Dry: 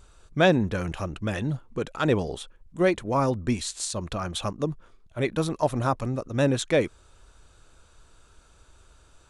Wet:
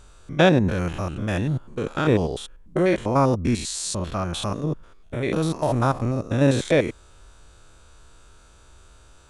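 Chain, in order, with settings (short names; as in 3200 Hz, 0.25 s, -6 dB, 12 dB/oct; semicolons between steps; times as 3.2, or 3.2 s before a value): stepped spectrum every 0.1 s; gain +6 dB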